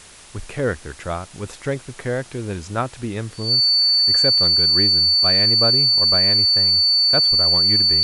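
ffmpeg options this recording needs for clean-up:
ffmpeg -i in.wav -af "bandreject=frequency=4500:width=30,afwtdn=0.0079" out.wav

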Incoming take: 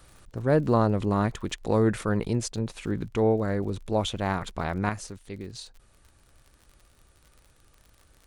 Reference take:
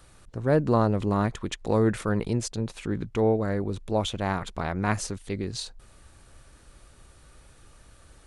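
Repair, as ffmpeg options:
ffmpeg -i in.wav -af "adeclick=threshold=4,asetnsamples=nb_out_samples=441:pad=0,asendcmd='4.89 volume volume 7dB',volume=0dB" out.wav

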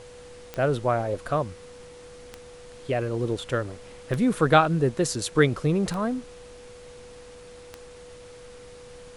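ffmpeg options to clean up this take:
ffmpeg -i in.wav -af "adeclick=threshold=4,bandreject=frequency=490:width=30,afftdn=noise_reduction=25:noise_floor=-45" out.wav

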